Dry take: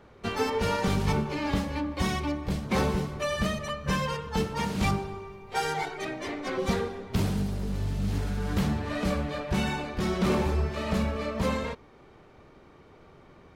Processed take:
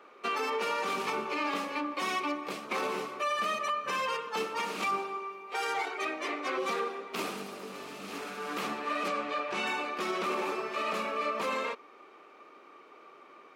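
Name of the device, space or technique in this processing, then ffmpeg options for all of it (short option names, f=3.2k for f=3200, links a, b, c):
laptop speaker: -filter_complex "[0:a]asettb=1/sr,asplit=3[a][b][c];[a]atrim=end=9.084[d];[b]atrim=start=9.08:end=9.67,asetpts=PTS-STARTPTS,afade=t=in:d=0.004:c=qsin,afade=t=out:st=0.586:d=0.004:c=qsin,lowpass=7.7k[e];[c]atrim=start=9.666[f];[d][e]acrossfade=d=0.004:c1=hsin:c2=qsin[g];[g][f]acrossfade=d=0.004:c1=qsin:c2=hsin,highpass=f=300:w=0.5412,highpass=f=300:w=1.3066,equalizer=f=1.2k:t=o:w=0.24:g=12,equalizer=f=2.5k:t=o:w=0.43:g=8,alimiter=limit=-21.5dB:level=0:latency=1:release=45,volume=-1.5dB"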